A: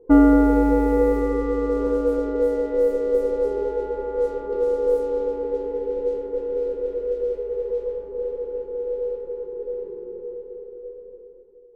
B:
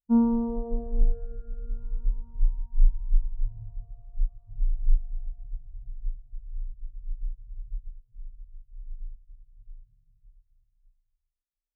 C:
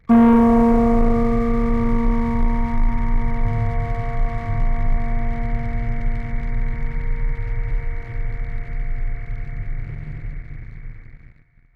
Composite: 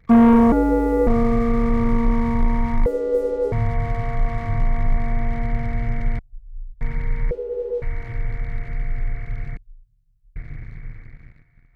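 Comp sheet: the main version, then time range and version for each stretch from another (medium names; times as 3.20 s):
C
0.52–1.07 s: from A
2.86–3.52 s: from A
6.19–6.81 s: from B
7.31–7.82 s: from A
9.57–10.36 s: from B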